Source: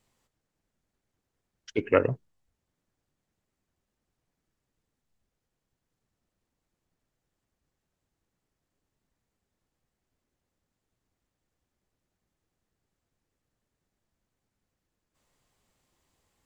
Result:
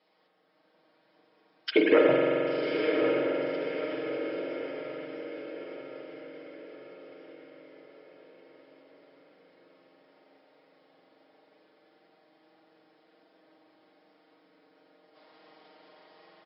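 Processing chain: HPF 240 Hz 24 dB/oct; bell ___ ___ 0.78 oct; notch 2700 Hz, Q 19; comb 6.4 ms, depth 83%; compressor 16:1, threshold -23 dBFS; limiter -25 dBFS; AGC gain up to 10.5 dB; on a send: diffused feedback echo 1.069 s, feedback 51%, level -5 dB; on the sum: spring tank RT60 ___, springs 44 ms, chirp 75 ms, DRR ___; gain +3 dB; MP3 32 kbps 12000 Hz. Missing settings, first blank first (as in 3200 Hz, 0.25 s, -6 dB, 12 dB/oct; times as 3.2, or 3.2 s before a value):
640 Hz, +6.5 dB, 3.6 s, -1.5 dB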